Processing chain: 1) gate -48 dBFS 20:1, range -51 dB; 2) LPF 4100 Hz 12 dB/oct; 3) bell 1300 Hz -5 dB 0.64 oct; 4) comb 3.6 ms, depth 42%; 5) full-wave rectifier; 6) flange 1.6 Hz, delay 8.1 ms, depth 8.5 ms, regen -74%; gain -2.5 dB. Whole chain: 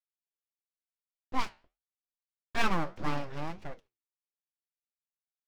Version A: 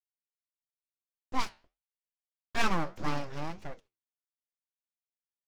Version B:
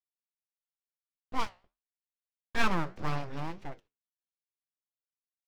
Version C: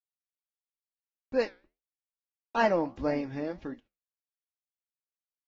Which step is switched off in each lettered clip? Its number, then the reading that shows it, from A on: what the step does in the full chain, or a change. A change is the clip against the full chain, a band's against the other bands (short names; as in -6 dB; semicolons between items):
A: 2, 8 kHz band +3.5 dB; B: 4, 125 Hz band +2.5 dB; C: 5, 500 Hz band +11.5 dB